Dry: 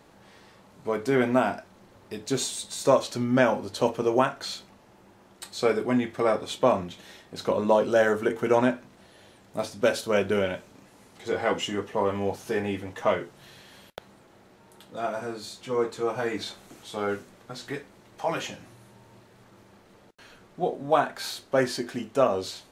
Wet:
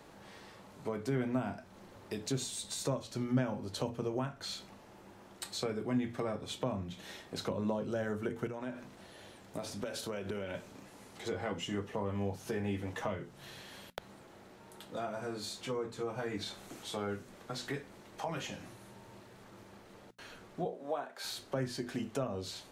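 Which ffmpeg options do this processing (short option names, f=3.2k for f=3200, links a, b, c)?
-filter_complex "[0:a]asettb=1/sr,asplit=3[a][b][c];[a]atrim=end=8.474[d];[b]atrim=start=8.47:end=10.55,asetpts=PTS-STARTPTS,afade=t=in:d=0.004:c=qsin,afade=t=out:st=2.076:d=0.004:c=qsin,acompressor=threshold=-33dB:ratio=4:attack=3.2:release=140:knee=1:detection=peak[e];[c]atrim=start=10.546[f];[d][e]acrossfade=d=0.004:c1=hsin:c2=qsin[g];[g][f]acrossfade=d=0.004:c1=qsin:c2=hsin,asettb=1/sr,asplit=3[h][i][j];[h]atrim=end=20.654[k];[i]atrim=start=20.65:end=21.24,asetpts=PTS-STARTPTS,afade=t=in:d=0.004:c=qsin,afade=t=out:st=0.586:d=0.004:c=qsin,highpass=f=470:t=q:w=1.5[l];[j]atrim=start=21.236[m];[k][l]acrossfade=d=0.004:c1=hsin:c2=qsin[n];[n][m]acrossfade=d=0.004:c1=qsin:c2=hsin,bandreject=f=60:t=h:w=6,bandreject=f=120:t=h:w=6,bandreject=f=180:t=h:w=6,bandreject=f=240:t=h:w=6,acrossover=split=190[o][p];[p]acompressor=threshold=-37dB:ratio=5[q];[o][q]amix=inputs=2:normalize=0"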